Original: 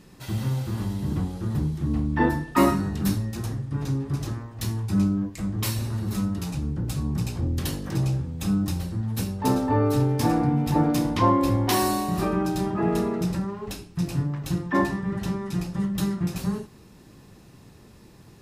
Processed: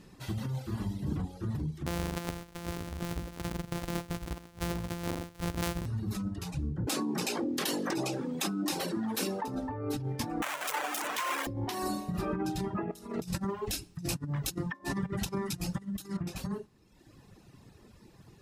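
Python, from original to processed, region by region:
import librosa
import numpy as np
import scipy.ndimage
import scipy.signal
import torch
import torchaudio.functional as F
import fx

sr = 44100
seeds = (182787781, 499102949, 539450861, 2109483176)

y = fx.chain(x, sr, fx.sample_sort(block=256),
    fx.high_shelf(hz=7400.0, db=8.0), at=(1.86, 5.86))
y = fx.chain(y, sr, fx.highpass(hz=260.0, slope=24),
    fx.env_flatten(amount_pct=70), at=(6.87, 9.48))
y = fx.chain(y, sr, fx.clip_1bit(),
    fx.highpass(hz=740.0, slope=12),
    fx.peak_eq(hz=4400.0, db=-7.5, octaves=0.78), at=(10.42, 11.47))
y = fx.chain(y, sr, fx.high_shelf(hz=4400.0, db=12.0),
    fx.over_compress(threshold_db=-29.0, ratio=-0.5), at=(12.91, 16.17))
y = fx.high_shelf(y, sr, hz=10000.0, db=-5.5)
y = fx.dereverb_blind(y, sr, rt60_s=1.2)
y = fx.over_compress(y, sr, threshold_db=-28.0, ratio=-1.0)
y = y * librosa.db_to_amplitude(-4.5)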